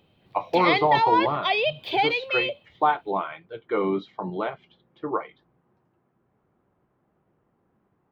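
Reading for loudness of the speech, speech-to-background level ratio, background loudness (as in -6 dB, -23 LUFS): -26.5 LUFS, -2.5 dB, -24.0 LUFS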